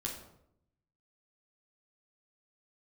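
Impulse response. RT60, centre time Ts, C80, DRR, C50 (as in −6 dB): 0.75 s, 33 ms, 8.5 dB, −1.5 dB, 5.0 dB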